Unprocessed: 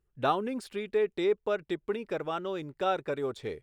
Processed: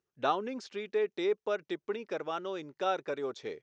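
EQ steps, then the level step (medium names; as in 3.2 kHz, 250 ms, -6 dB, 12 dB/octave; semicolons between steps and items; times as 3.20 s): Bessel high-pass 270 Hz, order 2; resonant low-pass 6.2 kHz, resonance Q 4.6; distance through air 110 m; -1.5 dB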